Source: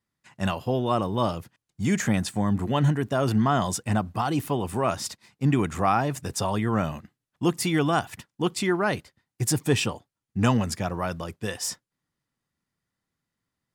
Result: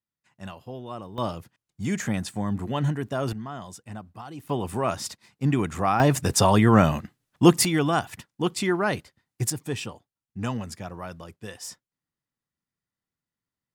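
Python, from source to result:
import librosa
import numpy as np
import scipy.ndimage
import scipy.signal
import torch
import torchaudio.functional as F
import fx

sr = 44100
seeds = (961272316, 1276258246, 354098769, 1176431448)

y = fx.gain(x, sr, db=fx.steps((0.0, -12.5), (1.18, -3.5), (3.33, -14.0), (4.49, -1.0), (6.0, 8.0), (7.65, 0.0), (9.5, -8.0)))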